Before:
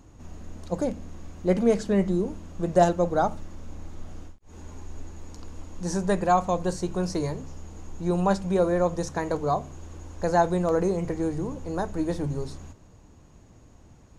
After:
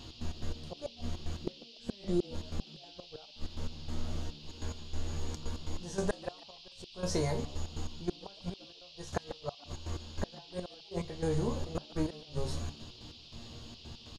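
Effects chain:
dynamic equaliser 310 Hz, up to −8 dB, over −44 dBFS, Q 4.8
downward compressor 2 to 1, threshold −33 dBFS, peak gain reduction 10.5 dB
resonators tuned to a chord D#2 fifth, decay 0.23 s
gate with flip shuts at −33 dBFS, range −32 dB
gate pattern "x.x.x..xxx" 143 BPM −12 dB
noise in a band 2,700–5,100 Hz −68 dBFS
echo with shifted repeats 145 ms, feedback 31%, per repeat +140 Hz, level −19.5 dB
level +13.5 dB

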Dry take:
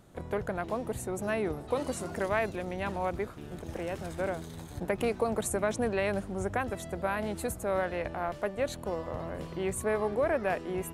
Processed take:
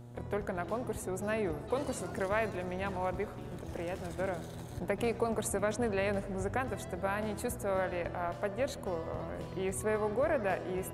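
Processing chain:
delay with a low-pass on its return 83 ms, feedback 79%, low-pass 1,700 Hz, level −17 dB
hum with harmonics 120 Hz, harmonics 8, −47 dBFS −8 dB per octave
level −2.5 dB

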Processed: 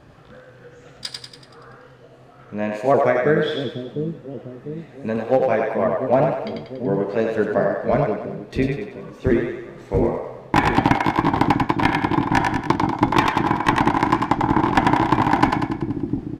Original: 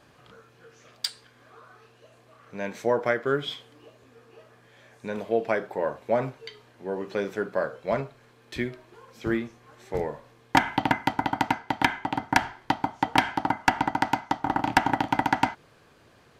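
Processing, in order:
pitch shifter swept by a sawtooth +2.5 semitones, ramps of 490 ms
spectral tilt −2.5 dB per octave
asymmetric clip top −14 dBFS
downsampling to 32,000 Hz
echo with a time of its own for lows and highs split 390 Hz, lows 700 ms, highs 95 ms, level −3 dB
level +5.5 dB

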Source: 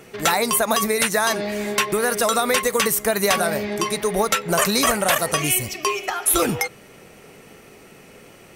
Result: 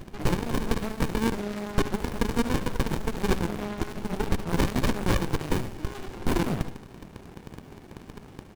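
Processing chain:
surface crackle 28 per second −29 dBFS
harmonic generator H 3 −14 dB, 5 −16 dB, 8 −19 dB, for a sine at −6 dBFS
on a send: repeating echo 73 ms, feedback 32%, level −11.5 dB
on the sum: windowed peak hold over 65 samples
level +1.5 dB

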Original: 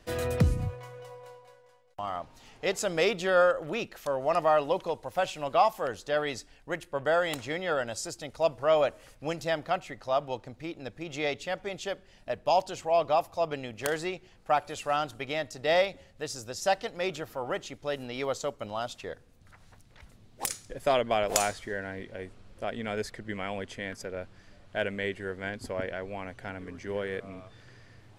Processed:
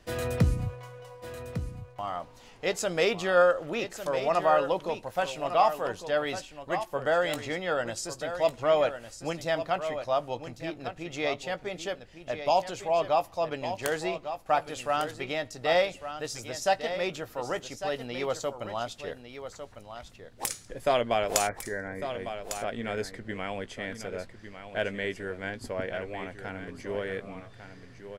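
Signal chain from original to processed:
0:21.47–0:22.08: linear-phase brick-wall low-pass 2,400 Hz
double-tracking delay 17 ms −13 dB
single-tap delay 1,152 ms −10 dB

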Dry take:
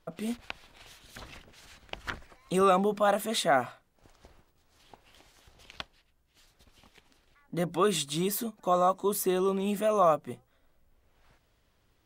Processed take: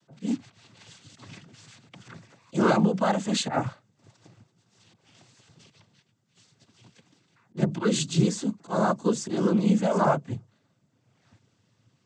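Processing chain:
volume swells 104 ms
bass and treble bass +14 dB, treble +6 dB
cochlear-implant simulation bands 16

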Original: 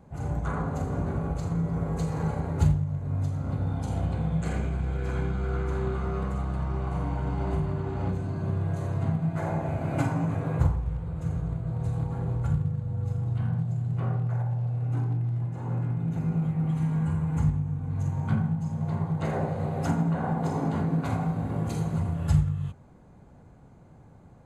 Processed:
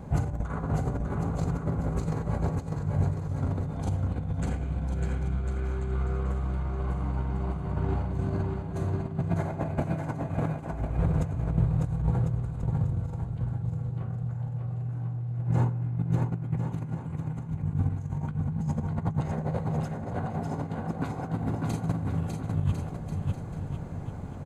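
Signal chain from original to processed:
compressor whose output falls as the input rises −34 dBFS, ratio −0.5
low-shelf EQ 200 Hz +3.5 dB
on a send: bouncing-ball delay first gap 600 ms, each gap 0.75×, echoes 5
on the sum: level +2 dB

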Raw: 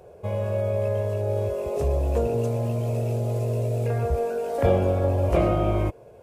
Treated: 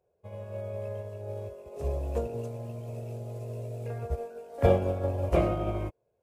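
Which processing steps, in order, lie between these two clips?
expander for the loud parts 2.5 to 1, over −35 dBFS

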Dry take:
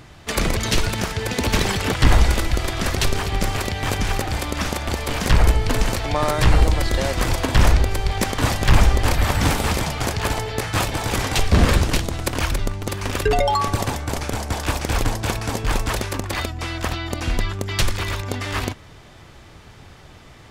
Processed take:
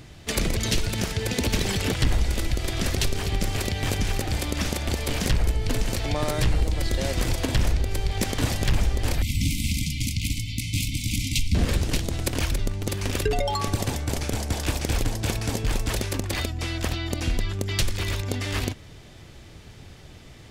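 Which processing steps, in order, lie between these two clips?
parametric band 1,100 Hz −8.5 dB 1.5 octaves
downward compressor 2.5 to 1, threshold −21 dBFS, peak gain reduction 9 dB
0:09.22–0:11.55: linear-phase brick-wall band-stop 310–2,000 Hz

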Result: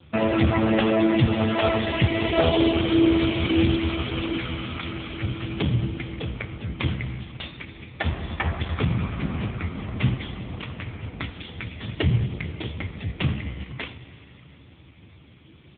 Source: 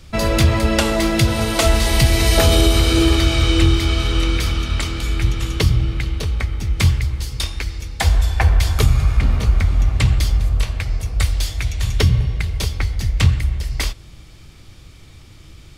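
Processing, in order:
repeating echo 91 ms, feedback 41%, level −21 dB
spring reverb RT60 3.5 s, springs 40 ms, chirp 45 ms, DRR 12 dB
AMR narrowband 5.15 kbit/s 8,000 Hz

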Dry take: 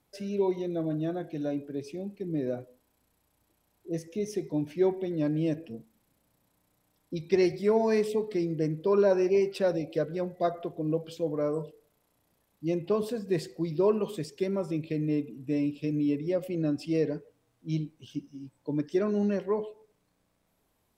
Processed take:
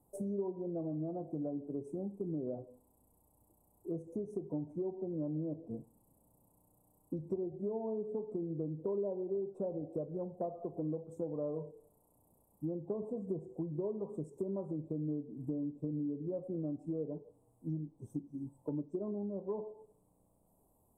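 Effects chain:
elliptic band-stop filter 920–8,400 Hz, stop band 40 dB
treble cut that deepens with the level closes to 760 Hz, closed at −22 dBFS
downward compressor 6 to 1, threshold −39 dBFS, peak gain reduction 17.5 dB
on a send: convolution reverb RT60 0.35 s, pre-delay 8 ms, DRR 15 dB
on the sum: level +3 dB

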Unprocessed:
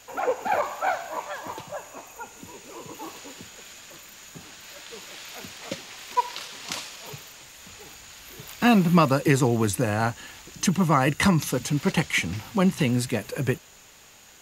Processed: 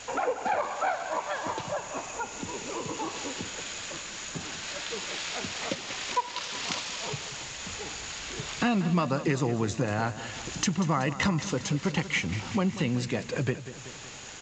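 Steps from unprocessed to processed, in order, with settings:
downward compressor 2.5 to 1, threshold −39 dBFS, peak gain reduction 17 dB
repeating echo 188 ms, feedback 55%, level −13.5 dB
level +8 dB
G.722 64 kbit/s 16,000 Hz

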